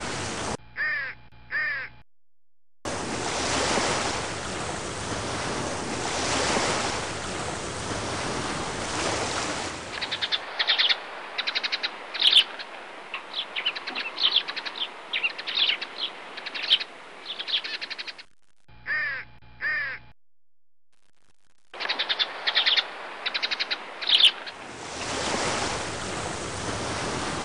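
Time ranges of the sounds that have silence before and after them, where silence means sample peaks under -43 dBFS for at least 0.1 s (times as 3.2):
2.85–18.25
18.69–20.12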